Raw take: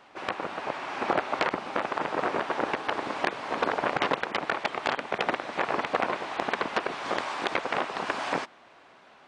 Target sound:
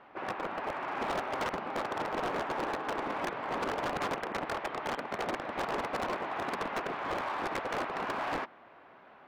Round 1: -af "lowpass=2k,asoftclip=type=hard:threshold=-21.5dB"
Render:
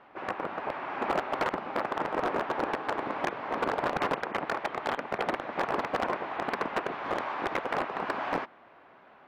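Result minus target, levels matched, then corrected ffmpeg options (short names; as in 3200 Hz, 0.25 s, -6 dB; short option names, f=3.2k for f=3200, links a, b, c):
hard clip: distortion -7 dB
-af "lowpass=2k,asoftclip=type=hard:threshold=-29.5dB"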